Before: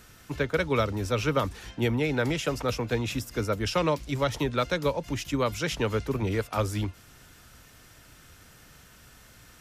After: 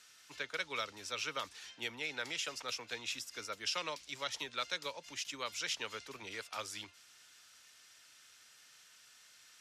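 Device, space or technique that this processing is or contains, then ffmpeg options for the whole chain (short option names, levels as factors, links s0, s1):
piezo pickup straight into a mixer: -af "lowpass=5100,aderivative,volume=1.58"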